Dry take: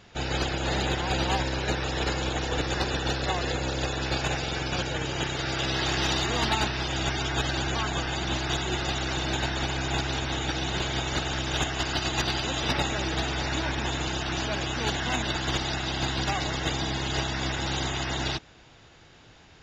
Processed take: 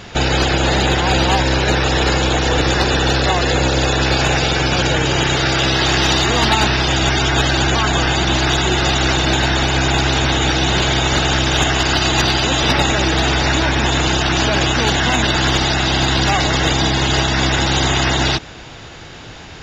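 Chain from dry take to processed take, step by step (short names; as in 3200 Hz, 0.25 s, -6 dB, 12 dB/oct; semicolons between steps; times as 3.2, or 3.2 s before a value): maximiser +24 dB; gain -6 dB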